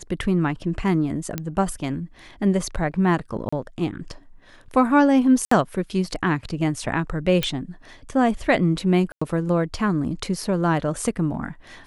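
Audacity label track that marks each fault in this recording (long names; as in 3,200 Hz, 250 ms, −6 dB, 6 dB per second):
1.380000	1.380000	click −12 dBFS
3.490000	3.520000	drop-out 35 ms
5.450000	5.510000	drop-out 64 ms
7.430000	7.430000	click −8 dBFS
9.120000	9.210000	drop-out 95 ms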